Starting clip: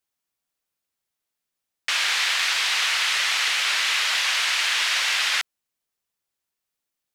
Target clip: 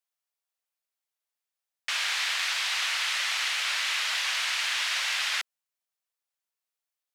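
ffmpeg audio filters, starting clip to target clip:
ffmpeg -i in.wav -af "highpass=frequency=490:width=0.5412,highpass=frequency=490:width=1.3066,volume=-6dB" out.wav

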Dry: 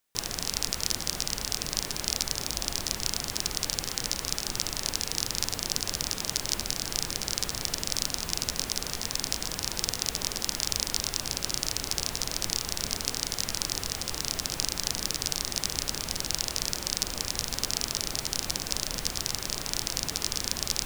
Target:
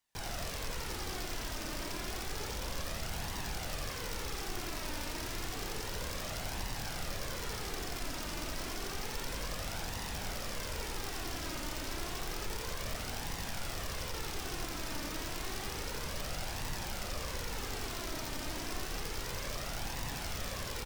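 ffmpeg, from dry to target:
ffmpeg -i in.wav -filter_complex "[0:a]highshelf=frequency=11000:gain=-9.5,acrossover=split=150|1300[link_01][link_02][link_03];[link_03]aeval=exprs='0.0944*(abs(mod(val(0)/0.0944+3,4)-2)-1)':channel_layout=same[link_04];[link_01][link_02][link_04]amix=inputs=3:normalize=0,flanger=delay=1:depth=2.4:regen=37:speed=0.3:shape=triangular,asoftclip=type=hard:threshold=-34.5dB,aecho=1:1:87:0.631,volume=1dB" out.wav

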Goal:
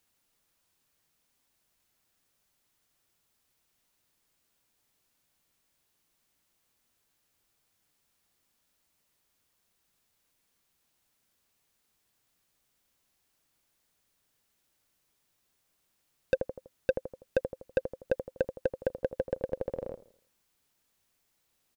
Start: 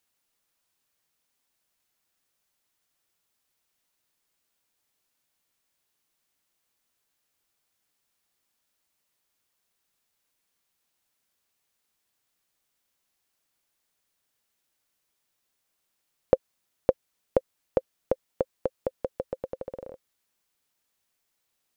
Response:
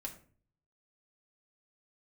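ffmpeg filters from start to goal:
-filter_complex "[0:a]asplit=2[link_01][link_02];[link_02]adelay=82,lowpass=frequency=2000:poles=1,volume=-16dB,asplit=2[link_03][link_04];[link_04]adelay=82,lowpass=frequency=2000:poles=1,volume=0.43,asplit=2[link_05][link_06];[link_06]adelay=82,lowpass=frequency=2000:poles=1,volume=0.43,asplit=2[link_07][link_08];[link_08]adelay=82,lowpass=frequency=2000:poles=1,volume=0.43[link_09];[link_01][link_03][link_05][link_07][link_09]amix=inputs=5:normalize=0,asoftclip=type=tanh:threshold=-21.5dB,lowshelf=frequency=290:gain=6.5,volume=2dB"

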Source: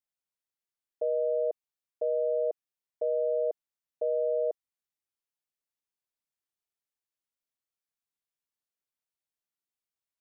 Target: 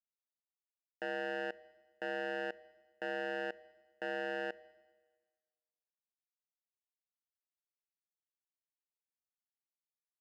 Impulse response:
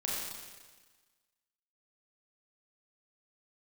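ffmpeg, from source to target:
-filter_complex "[0:a]equalizer=frequency=360:width_type=o:width=1.3:gain=-5.5,acrusher=bits=3:mix=0:aa=0.5,asplit=2[link_01][link_02];[1:a]atrim=start_sample=2205,lowshelf=frequency=340:gain=6.5[link_03];[link_02][link_03]afir=irnorm=-1:irlink=0,volume=-23.5dB[link_04];[link_01][link_04]amix=inputs=2:normalize=0,volume=4.5dB"

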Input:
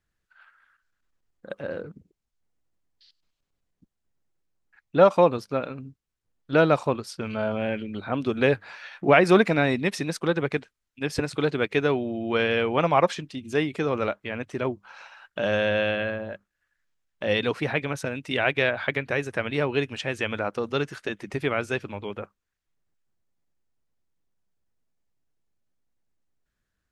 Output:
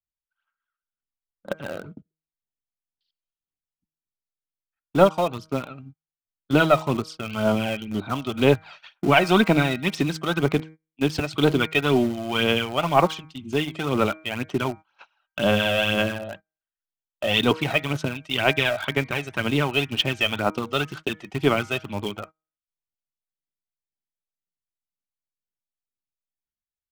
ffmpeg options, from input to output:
ffmpeg -i in.wav -filter_complex "[0:a]aphaser=in_gain=1:out_gain=1:delay=1.6:decay=0.55:speed=2:type=sinusoidal,bandreject=frequency=158:width_type=h:width=4,bandreject=frequency=316:width_type=h:width=4,bandreject=frequency=474:width_type=h:width=4,bandreject=frequency=632:width_type=h:width=4,bandreject=frequency=790:width_type=h:width=4,bandreject=frequency=948:width_type=h:width=4,bandreject=frequency=1106:width_type=h:width=4,bandreject=frequency=1264:width_type=h:width=4,bandreject=frequency=1422:width_type=h:width=4,bandreject=frequency=1580:width_type=h:width=4,bandreject=frequency=1738:width_type=h:width=4,bandreject=frequency=1896:width_type=h:width=4,bandreject=frequency=2054:width_type=h:width=4,bandreject=frequency=2212:width_type=h:width=4,bandreject=frequency=2370:width_type=h:width=4,agate=range=-24dB:threshold=-39dB:ratio=16:detection=peak,equalizer=frequency=500:width_type=o:width=0.33:gain=-8,equalizer=frequency=2000:width_type=o:width=0.33:gain=-5,equalizer=frequency=3150:width_type=o:width=0.33:gain=7,equalizer=frequency=10000:width_type=o:width=0.33:gain=-9,acrossover=split=120|4900[link_01][link_02][link_03];[link_02]dynaudnorm=framelen=190:gausssize=7:maxgain=5.5dB[link_04];[link_01][link_04][link_03]amix=inputs=3:normalize=0,aeval=exprs='0.944*(cos(1*acos(clip(val(0)/0.944,-1,1)))-cos(1*PI/2))+0.0668*(cos(2*acos(clip(val(0)/0.944,-1,1)))-cos(2*PI/2))+0.0075*(cos(6*acos(clip(val(0)/0.944,-1,1)))-cos(6*PI/2))':channel_layout=same,asplit=2[link_05][link_06];[link_06]acrusher=bits=3:mix=0:aa=0.000001,volume=-11.5dB[link_07];[link_05][link_07]amix=inputs=2:normalize=0,bandreject=frequency=1700:width=10,volume=-3.5dB" out.wav

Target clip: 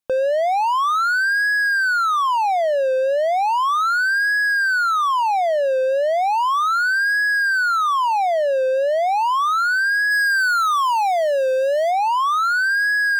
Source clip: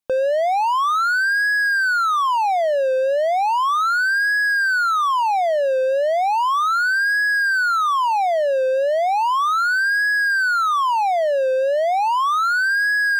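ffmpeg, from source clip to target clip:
ffmpeg -i in.wav -filter_complex "[0:a]asplit=3[link_01][link_02][link_03];[link_01]afade=type=out:start_time=10.1:duration=0.02[link_04];[link_02]highshelf=frequency=4800:gain=8,afade=type=in:start_time=10.1:duration=0.02,afade=type=out:start_time=11.9:duration=0.02[link_05];[link_03]afade=type=in:start_time=11.9:duration=0.02[link_06];[link_04][link_05][link_06]amix=inputs=3:normalize=0" out.wav

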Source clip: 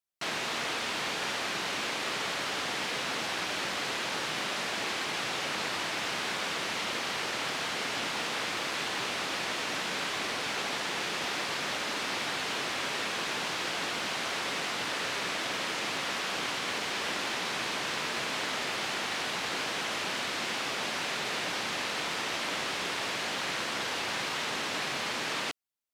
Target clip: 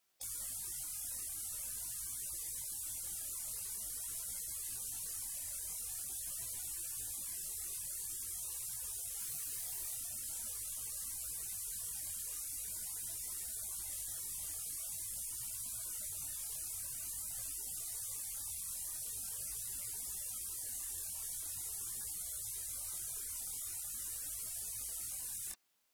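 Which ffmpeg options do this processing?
ffmpeg -i in.wav -filter_complex "[0:a]asplit=2[link_01][link_02];[link_02]asoftclip=type=tanh:threshold=-30.5dB,volume=-4dB[link_03];[link_01][link_03]amix=inputs=2:normalize=0,equalizer=frequency=81:width_type=o:width=1:gain=-8.5,asplit=3[link_04][link_05][link_06];[link_04]afade=type=out:start_time=9.18:duration=0.02[link_07];[link_05]volume=28.5dB,asoftclip=hard,volume=-28.5dB,afade=type=in:start_time=9.18:duration=0.02,afade=type=out:start_time=9.95:duration=0.02[link_08];[link_06]afade=type=in:start_time=9.95:duration=0.02[link_09];[link_07][link_08][link_09]amix=inputs=3:normalize=0,afftfilt=real='re*lt(hypot(re,im),0.00794)':imag='im*lt(hypot(re,im),0.00794)':win_size=1024:overlap=0.75,flanger=delay=17:depth=6.9:speed=0.45,volume=12dB" out.wav

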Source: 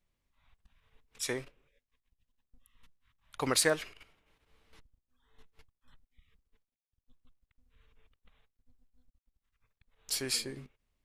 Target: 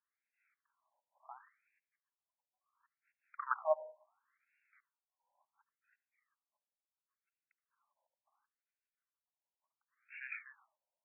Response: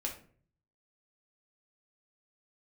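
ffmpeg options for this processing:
-filter_complex "[0:a]aeval=exprs='0.211*(cos(1*acos(clip(val(0)/0.211,-1,1)))-cos(1*PI/2))+0.0119*(cos(7*acos(clip(val(0)/0.211,-1,1)))-cos(7*PI/2))':channel_layout=same,asplit=2[link_01][link_02];[1:a]atrim=start_sample=2205,asetrate=48510,aresample=44100,adelay=72[link_03];[link_02][link_03]afir=irnorm=-1:irlink=0,volume=-19dB[link_04];[link_01][link_04]amix=inputs=2:normalize=0,afftfilt=real='re*between(b*sr/1024,710*pow(2000/710,0.5+0.5*sin(2*PI*0.71*pts/sr))/1.41,710*pow(2000/710,0.5+0.5*sin(2*PI*0.71*pts/sr))*1.41)':imag='im*between(b*sr/1024,710*pow(2000/710,0.5+0.5*sin(2*PI*0.71*pts/sr))/1.41,710*pow(2000/710,0.5+0.5*sin(2*PI*0.71*pts/sr))*1.41)':win_size=1024:overlap=0.75,volume=2.5dB"

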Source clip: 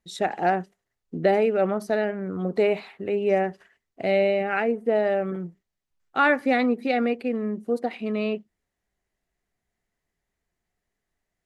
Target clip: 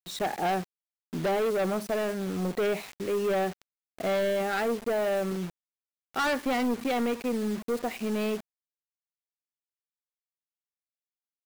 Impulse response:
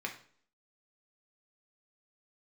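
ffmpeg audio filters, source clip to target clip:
-af "asoftclip=type=tanh:threshold=-23dB,acrusher=bits=6:mix=0:aa=0.000001"

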